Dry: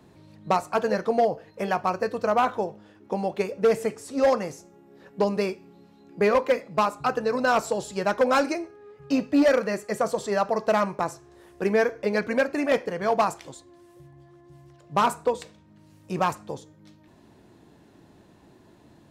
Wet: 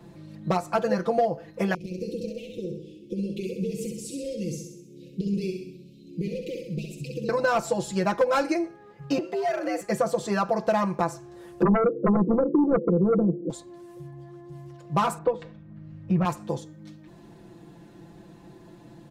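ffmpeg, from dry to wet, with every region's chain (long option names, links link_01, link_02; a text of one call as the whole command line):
ffmpeg -i in.wav -filter_complex "[0:a]asettb=1/sr,asplit=3[link_01][link_02][link_03];[link_01]atrim=end=1.744[link_04];[link_02]atrim=start=1.74:end=7.29,asetpts=PTS-STARTPTS,afade=type=in:duration=0.004:curve=qsin,afade=type=out:start_time=5.546:duration=0.004:curve=qsin,acompressor=threshold=-31dB:ratio=6:attack=3.2:release=140:knee=1:detection=peak,asuperstop=centerf=1100:order=12:qfactor=0.56,aecho=1:1:65|130|195|260|325|390|455:0.562|0.298|0.158|0.0837|0.0444|0.0235|0.0125,atrim=end_sample=244755[link_05];[link_03]atrim=start=7.286[link_06];[link_04][link_05]acrossfade=duration=0.004:curve1=hsin:curve2=qsin[link_07];[link_07][link_06]acrossfade=duration=0.004:curve1=qsin:curve2=hsin,asettb=1/sr,asplit=3[link_08][link_09][link_10];[link_08]atrim=end=9.184[link_11];[link_09]atrim=start=9.18:end=9.81,asetpts=PTS-STARTPTS,afade=type=in:duration=0.004:curve=qsin,afade=type=out:start_time=0.626:duration=0.004:curve=qsin,acompressor=threshold=-28dB:ratio=6:attack=3.2:release=140:knee=1:detection=peak,afreqshift=110[link_12];[link_10]atrim=start=9.806[link_13];[link_11][link_12]acrossfade=duration=0.004:curve1=hsin:curve2=qsin[link_14];[link_14][link_13]acrossfade=duration=0.004:curve1=qsin:curve2=hsin,asettb=1/sr,asplit=3[link_15][link_16][link_17];[link_15]atrim=end=11.624[link_18];[link_16]atrim=start=11.62:end=13.5,asetpts=PTS-STARTPTS,afade=type=in:duration=0.004:curve=qsin,afade=type=out:start_time=1.876:duration=0.004:curve=qsin,asuperpass=centerf=270:order=12:qfactor=0.81,aeval=exprs='0.237*sin(PI/2*3.16*val(0)/0.237)':channel_layout=same[link_19];[link_17]atrim=start=13.496[link_20];[link_18][link_19]acrossfade=duration=0.004:curve1=hsin:curve2=qsin[link_21];[link_21][link_20]acrossfade=duration=0.004:curve1=qsin:curve2=hsin,asettb=1/sr,asplit=3[link_22][link_23][link_24];[link_22]atrim=end=15.184[link_25];[link_23]atrim=start=15.18:end=16.25,asetpts=PTS-STARTPTS,afade=type=in:duration=0.004:curve=qsin,afade=type=out:start_time=1.066:duration=0.004:curve=qsin,lowpass=2200,asubboost=boost=12:cutoff=160[link_26];[link_24]atrim=start=16.246[link_27];[link_25][link_26]acrossfade=duration=0.004:curve1=hsin:curve2=qsin[link_28];[link_28][link_27]acrossfade=duration=0.004:curve1=qsin:curve2=hsin,lowshelf=frequency=360:gain=5.5,aecho=1:1:5.9:0.9,acompressor=threshold=-22dB:ratio=2.5" out.wav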